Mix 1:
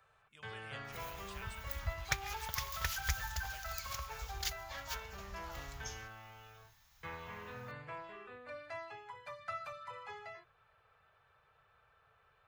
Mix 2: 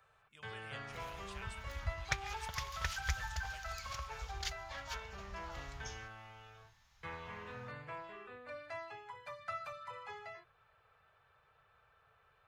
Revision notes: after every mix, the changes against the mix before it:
second sound: add distance through air 59 m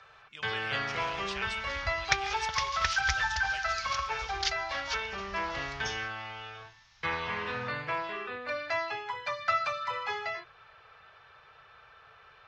speech +5.0 dB; first sound +7.0 dB; master: add FFT filter 110 Hz 0 dB, 360 Hz +6 dB, 510 Hz +4 dB, 5.6 kHz +12 dB, 11 kHz -18 dB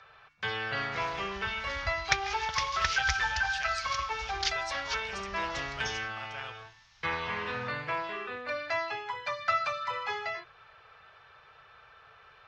speech: entry +2.25 s

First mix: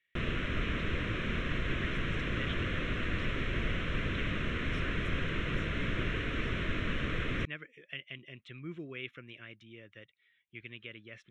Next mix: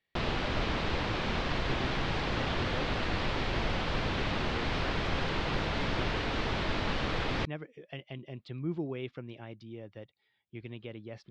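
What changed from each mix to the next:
speech: add tilt shelf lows +9 dB, about 790 Hz; master: remove static phaser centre 2 kHz, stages 4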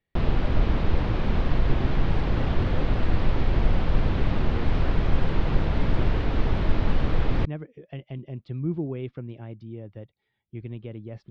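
master: add tilt EQ -3 dB/octave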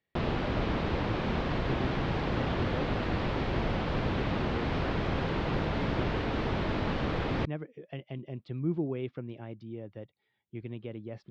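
master: add high-pass 190 Hz 6 dB/octave

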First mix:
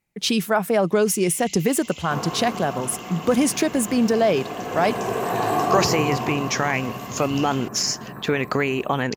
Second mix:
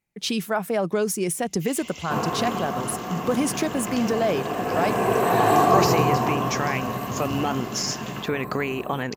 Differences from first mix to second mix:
speech -4.5 dB; first sound: entry +0.55 s; second sound +4.0 dB

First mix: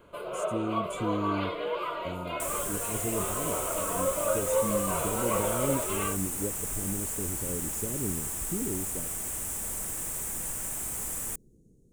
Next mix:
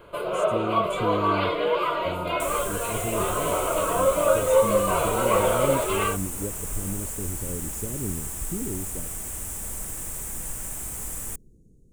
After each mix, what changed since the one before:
first sound +8.0 dB; master: add bass shelf 96 Hz +9.5 dB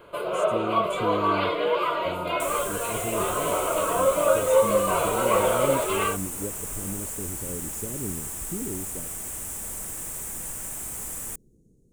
master: add bass shelf 96 Hz -9.5 dB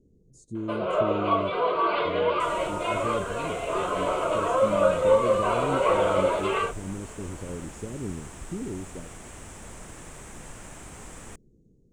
first sound: entry +0.55 s; master: add distance through air 120 m

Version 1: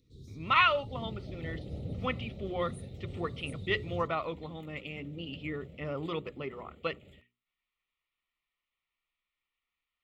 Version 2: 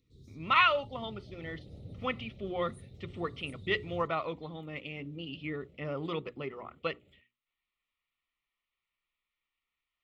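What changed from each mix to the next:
first sound -5.5 dB; second sound -10.0 dB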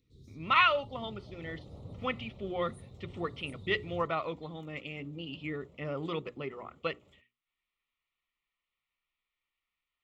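second sound: remove static phaser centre 2.5 kHz, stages 4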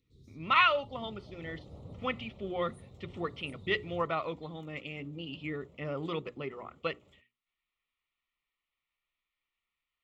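first sound -3.0 dB

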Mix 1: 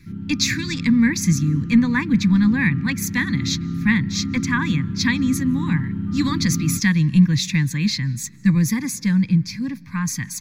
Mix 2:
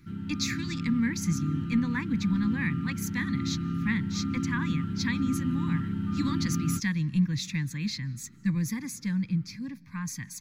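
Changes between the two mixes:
speech -11.0 dB; background: add tilt shelf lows -6 dB, about 690 Hz

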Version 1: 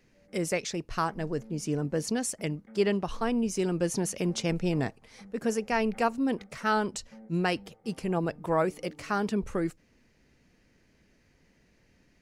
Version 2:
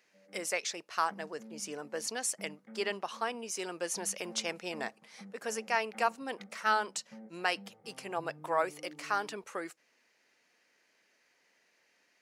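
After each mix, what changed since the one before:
speech: add high-pass 700 Hz 12 dB/octave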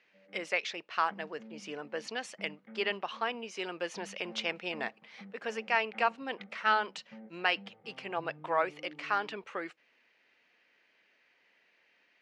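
master: add resonant low-pass 3 kHz, resonance Q 1.7

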